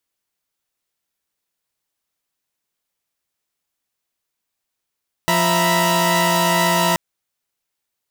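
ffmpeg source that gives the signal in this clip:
-f lavfi -i "aevalsrc='0.126*((2*mod(174.61*t,1)-1)+(2*mod(659.26*t,1)-1)+(2*mod(932.33*t,1)-1)+(2*mod(987.77*t,1)-1))':d=1.68:s=44100"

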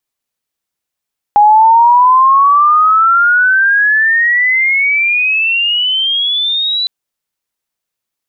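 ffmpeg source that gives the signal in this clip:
-f lavfi -i "aevalsrc='pow(10,(-3-9*t/5.51)/20)*sin(2*PI*820*5.51/log(4000/820)*(exp(log(4000/820)*t/5.51)-1))':d=5.51:s=44100"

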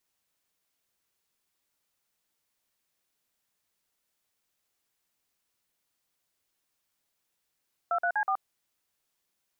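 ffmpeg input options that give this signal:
-f lavfi -i "aevalsrc='0.0447*clip(min(mod(t,0.123),0.075-mod(t,0.123))/0.002,0,1)*(eq(floor(t/0.123),0)*(sin(2*PI*697*mod(t,0.123))+sin(2*PI*1336*mod(t,0.123)))+eq(floor(t/0.123),1)*(sin(2*PI*697*mod(t,0.123))+sin(2*PI*1477*mod(t,0.123)))+eq(floor(t/0.123),2)*(sin(2*PI*852*mod(t,0.123))+sin(2*PI*1633*mod(t,0.123)))+eq(floor(t/0.123),3)*(sin(2*PI*770*mod(t,0.123))+sin(2*PI*1209*mod(t,0.123))))':d=0.492:s=44100"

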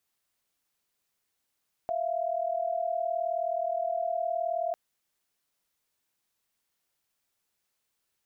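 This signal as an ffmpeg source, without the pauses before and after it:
-f lavfi -i "aevalsrc='0.0316*(sin(2*PI*659.26*t)+sin(2*PI*698.46*t))':d=2.85:s=44100"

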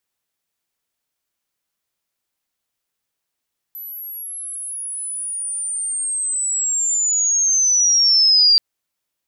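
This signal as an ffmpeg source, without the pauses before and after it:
-f lavfi -i "aevalsrc='pow(10,(-30+21*t/4.83)/20)*sin(2*PI*(12000*t-7300*t*t/(2*4.83)))':d=4.83:s=44100"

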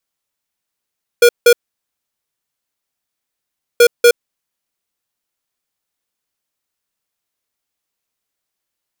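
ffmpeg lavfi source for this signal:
-f lavfi -i "aevalsrc='0.473*(2*lt(mod(478*t,1),0.5)-1)*clip(min(mod(mod(t,2.58),0.24),0.07-mod(mod(t,2.58),0.24))/0.005,0,1)*lt(mod(t,2.58),0.48)':d=5.16:s=44100"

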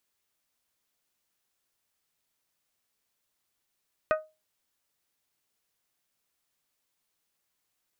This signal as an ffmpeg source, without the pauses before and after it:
-f lavfi -i "aevalsrc='0.112*pow(10,-3*t/0.26)*sin(2*PI*624*t)+0.0708*pow(10,-3*t/0.16)*sin(2*PI*1248*t)+0.0447*pow(10,-3*t/0.141)*sin(2*PI*1497.6*t)+0.0282*pow(10,-3*t/0.121)*sin(2*PI*1872*t)+0.0178*pow(10,-3*t/0.099)*sin(2*PI*2496*t)':d=0.89:s=44100"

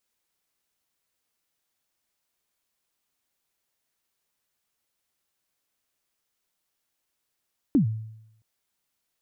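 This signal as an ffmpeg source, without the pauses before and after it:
-f lavfi -i "aevalsrc='0.2*pow(10,-3*t/0.81)*sin(2*PI*(320*0.109/log(110/320)*(exp(log(110/320)*min(t,0.109)/0.109)-1)+110*max(t-0.109,0)))':d=0.67:s=44100"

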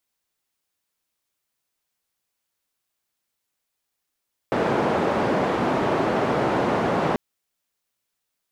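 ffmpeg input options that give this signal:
-f lavfi -i "anoisesrc=c=white:d=2.64:r=44100:seed=1,highpass=f=150,lowpass=f=730,volume=-1.9dB"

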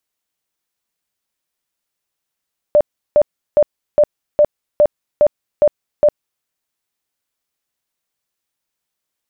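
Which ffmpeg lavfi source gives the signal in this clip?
-f lavfi -i "aevalsrc='0.473*sin(2*PI*594*mod(t,0.41))*lt(mod(t,0.41),34/594)':d=3.69:s=44100"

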